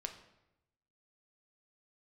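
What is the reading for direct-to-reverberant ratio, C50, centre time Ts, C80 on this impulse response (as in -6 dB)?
5.0 dB, 9.5 dB, 15 ms, 12.5 dB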